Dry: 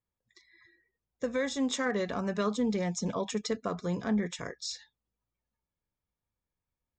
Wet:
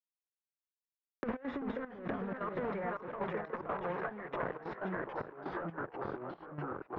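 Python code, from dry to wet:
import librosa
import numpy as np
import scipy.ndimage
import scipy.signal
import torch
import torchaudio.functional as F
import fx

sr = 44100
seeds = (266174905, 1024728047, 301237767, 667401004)

y = np.where(np.abs(x) >= 10.0 ** (-38.5 / 20.0), x, 0.0)
y = fx.highpass(y, sr, hz=700.0, slope=12, at=(2.34, 4.43))
y = y + 10.0 ** (-14.0 / 20.0) * np.pad(y, (int(530 * sr / 1000.0), 0))[:len(y)]
y = 10.0 ** (-36.0 / 20.0) * np.tanh(y / 10.0 ** (-36.0 / 20.0))
y = fx.over_compress(y, sr, threshold_db=-43.0, ratio=-0.5)
y = scipy.signal.sosfilt(scipy.signal.butter(4, 1800.0, 'lowpass', fs=sr, output='sos'), y)
y = fx.echo_pitch(y, sr, ms=234, semitones=-2, count=3, db_per_echo=-6.0)
y = fx.step_gate(y, sr, bpm=187, pattern='x.x.xxxxx...xx', floor_db=-12.0, edge_ms=4.5)
y = fx.band_squash(y, sr, depth_pct=100)
y = y * 10.0 ** (8.0 / 20.0)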